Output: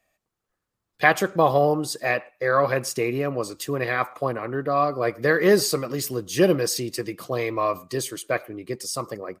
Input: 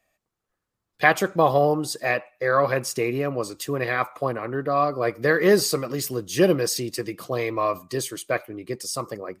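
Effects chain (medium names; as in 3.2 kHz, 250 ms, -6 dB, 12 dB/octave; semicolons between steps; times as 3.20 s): speakerphone echo 110 ms, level -26 dB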